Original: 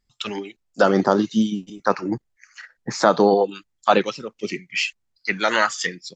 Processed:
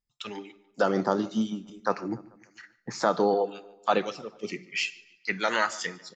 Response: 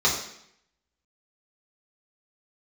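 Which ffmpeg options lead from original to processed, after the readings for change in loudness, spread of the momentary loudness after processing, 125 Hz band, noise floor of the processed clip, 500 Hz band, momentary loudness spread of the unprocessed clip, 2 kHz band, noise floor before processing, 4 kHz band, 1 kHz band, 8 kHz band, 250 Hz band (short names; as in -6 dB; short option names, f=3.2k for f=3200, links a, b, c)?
-7.0 dB, 15 LU, -8.0 dB, -68 dBFS, -7.5 dB, 14 LU, -7.0 dB, -74 dBFS, -7.5 dB, -7.0 dB, -7.5 dB, -8.0 dB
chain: -filter_complex "[0:a]agate=range=-6dB:threshold=-51dB:ratio=16:detection=peak,dynaudnorm=f=150:g=9:m=11.5dB,asplit=2[a][b];[b]adelay=146,lowpass=f=3.5k:p=1,volume=-21dB,asplit=2[c][d];[d]adelay=146,lowpass=f=3.5k:p=1,volume=0.49,asplit=2[e][f];[f]adelay=146,lowpass=f=3.5k:p=1,volume=0.49,asplit=2[g][h];[h]adelay=146,lowpass=f=3.5k:p=1,volume=0.49[i];[a][c][e][g][i]amix=inputs=5:normalize=0,asplit=2[j][k];[1:a]atrim=start_sample=2205[l];[k][l]afir=irnorm=-1:irlink=0,volume=-29.5dB[m];[j][m]amix=inputs=2:normalize=0,volume=-9dB"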